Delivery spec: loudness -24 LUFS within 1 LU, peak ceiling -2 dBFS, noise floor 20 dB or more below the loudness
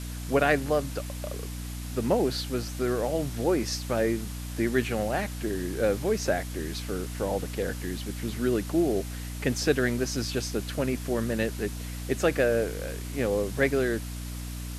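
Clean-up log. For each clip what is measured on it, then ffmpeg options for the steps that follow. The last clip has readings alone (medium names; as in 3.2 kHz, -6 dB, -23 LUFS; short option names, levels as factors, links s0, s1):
hum 60 Hz; highest harmonic 300 Hz; hum level -33 dBFS; noise floor -36 dBFS; noise floor target -49 dBFS; loudness -28.5 LUFS; peak level -8.5 dBFS; loudness target -24.0 LUFS
-> -af "bandreject=f=60:t=h:w=6,bandreject=f=120:t=h:w=6,bandreject=f=180:t=h:w=6,bandreject=f=240:t=h:w=6,bandreject=f=300:t=h:w=6"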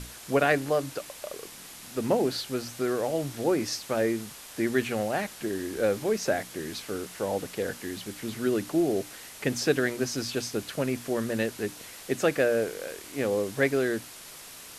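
hum not found; noise floor -46 dBFS; noise floor target -49 dBFS
-> -af "afftdn=nr=6:nf=-46"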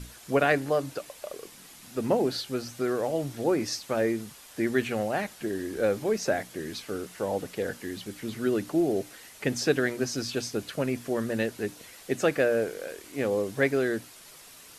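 noise floor -50 dBFS; loudness -29.0 LUFS; peak level -8.5 dBFS; loudness target -24.0 LUFS
-> -af "volume=1.78"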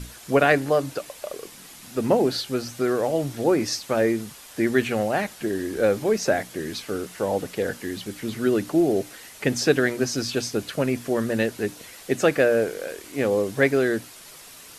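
loudness -24.0 LUFS; peak level -3.5 dBFS; noise floor -45 dBFS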